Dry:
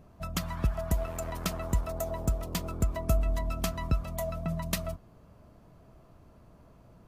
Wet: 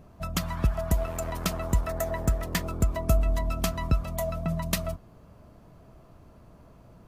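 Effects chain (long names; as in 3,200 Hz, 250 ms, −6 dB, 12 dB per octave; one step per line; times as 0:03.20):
0:01.86–0:02.64: parametric band 1,800 Hz +11.5 dB 0.47 octaves
level +3.5 dB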